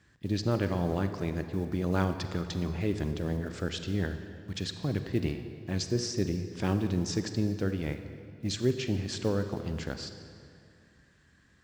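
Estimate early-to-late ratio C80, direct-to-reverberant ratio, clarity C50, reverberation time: 9.5 dB, 8.0 dB, 8.5 dB, 2.4 s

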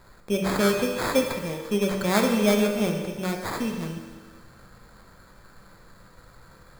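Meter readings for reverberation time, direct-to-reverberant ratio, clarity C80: 1.6 s, 2.0 dB, 6.0 dB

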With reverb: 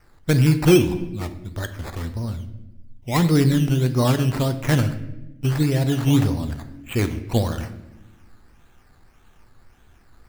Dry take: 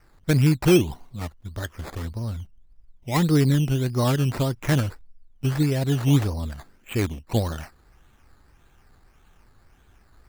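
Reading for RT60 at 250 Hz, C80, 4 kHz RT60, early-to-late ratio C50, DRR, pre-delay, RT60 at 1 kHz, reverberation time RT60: 1.7 s, 14.0 dB, 0.70 s, 12.0 dB, 9.0 dB, 4 ms, 0.80 s, 1.0 s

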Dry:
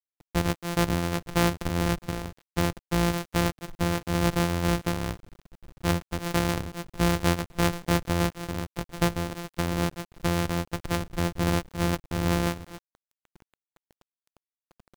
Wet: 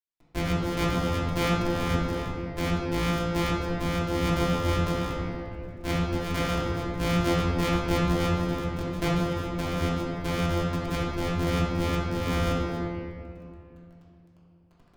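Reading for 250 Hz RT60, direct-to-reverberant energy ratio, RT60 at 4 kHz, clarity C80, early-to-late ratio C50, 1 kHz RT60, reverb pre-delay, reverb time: 3.1 s, -8.5 dB, 1.5 s, 0.0 dB, -2.0 dB, 2.4 s, 3 ms, 2.6 s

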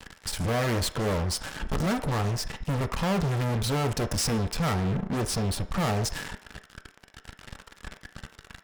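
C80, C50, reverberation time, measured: 16.5 dB, 13.5 dB, 0.60 s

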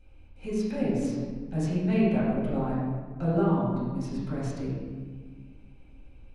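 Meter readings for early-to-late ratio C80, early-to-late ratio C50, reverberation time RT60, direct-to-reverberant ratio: 1.0 dB, -1.0 dB, 1.6 s, -10.0 dB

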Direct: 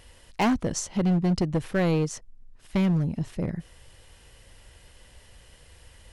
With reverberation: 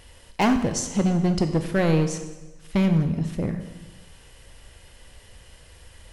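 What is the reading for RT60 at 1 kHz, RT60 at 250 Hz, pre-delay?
1.1 s, 1.2 s, 16 ms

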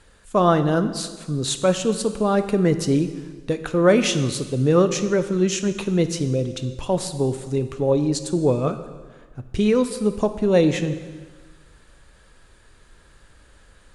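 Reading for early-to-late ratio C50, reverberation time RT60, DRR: 11.5 dB, 1.5 s, 9.5 dB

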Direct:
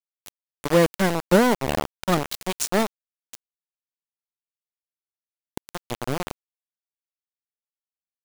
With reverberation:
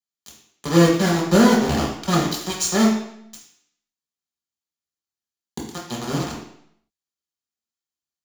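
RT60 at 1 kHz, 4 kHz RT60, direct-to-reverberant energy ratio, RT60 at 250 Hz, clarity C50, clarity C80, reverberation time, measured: 0.70 s, 0.70 s, -5.5 dB, 0.75 s, 3.5 dB, 6.5 dB, 0.70 s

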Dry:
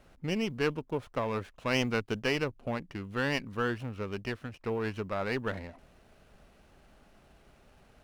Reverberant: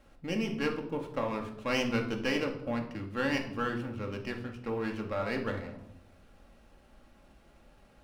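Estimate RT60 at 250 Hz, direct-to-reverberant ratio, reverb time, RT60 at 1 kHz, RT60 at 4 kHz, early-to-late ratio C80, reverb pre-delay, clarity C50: 1.2 s, 2.0 dB, 0.75 s, 0.70 s, 0.55 s, 12.5 dB, 4 ms, 9.0 dB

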